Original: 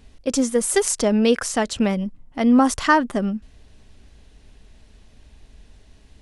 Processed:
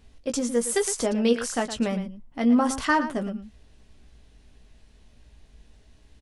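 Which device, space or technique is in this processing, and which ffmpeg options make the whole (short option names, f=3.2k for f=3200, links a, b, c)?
slapback doubling: -filter_complex "[0:a]asplit=3[a][b][c];[b]adelay=17,volume=-7dB[d];[c]adelay=114,volume=-11.5dB[e];[a][d][e]amix=inputs=3:normalize=0,volume=-6dB"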